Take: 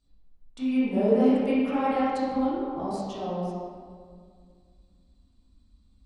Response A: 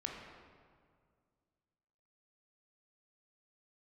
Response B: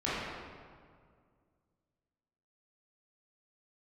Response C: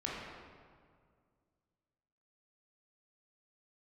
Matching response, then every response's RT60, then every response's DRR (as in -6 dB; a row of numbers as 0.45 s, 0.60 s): B; 2.0 s, 2.0 s, 2.0 s; -0.5 dB, -11.0 dB, -5.5 dB